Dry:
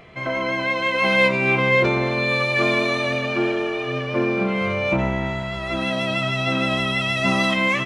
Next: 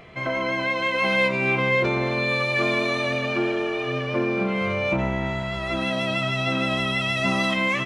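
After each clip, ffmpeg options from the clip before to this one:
ffmpeg -i in.wav -af "acompressor=threshold=-24dB:ratio=1.5" out.wav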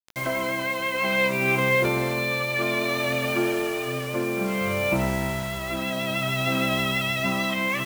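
ffmpeg -i in.wav -af "acrusher=bits=5:mix=0:aa=0.000001,tremolo=f=0.6:d=0.3" out.wav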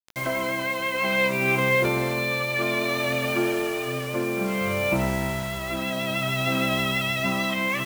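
ffmpeg -i in.wav -af anull out.wav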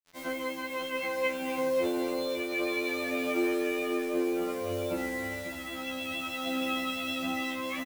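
ffmpeg -i in.wav -af "aecho=1:1:544:0.398,afftfilt=real='re*2*eq(mod(b,4),0)':imag='im*2*eq(mod(b,4),0)':win_size=2048:overlap=0.75,volume=-6dB" out.wav

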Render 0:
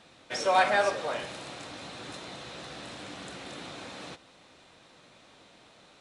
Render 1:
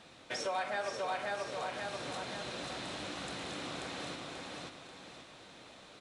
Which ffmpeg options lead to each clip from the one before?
ffmpeg -i in.wav -af "aecho=1:1:536|1072|1608|2144|2680:0.708|0.255|0.0917|0.033|0.0119,acompressor=threshold=-37dB:ratio=3" out.wav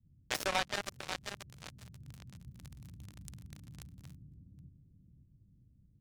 ffmpeg -i in.wav -filter_complex "[0:a]adynamicequalizer=threshold=0.00355:dfrequency=600:dqfactor=0.76:tfrequency=600:tqfactor=0.76:attack=5:release=100:ratio=0.375:range=3:mode=cutabove:tftype=bell,acrossover=split=140[link_01][link_02];[link_02]acrusher=bits=4:mix=0:aa=0.5[link_03];[link_01][link_03]amix=inputs=2:normalize=0,volume=8dB" out.wav

